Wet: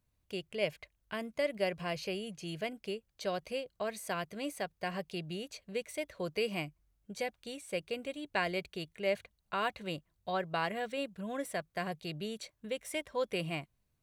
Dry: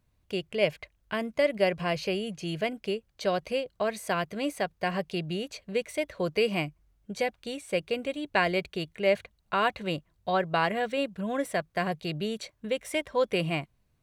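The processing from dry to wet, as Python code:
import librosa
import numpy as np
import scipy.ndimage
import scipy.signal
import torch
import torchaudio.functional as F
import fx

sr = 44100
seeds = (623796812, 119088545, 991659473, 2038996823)

y = fx.high_shelf(x, sr, hz=5300.0, db=6.5)
y = y * 10.0 ** (-8.0 / 20.0)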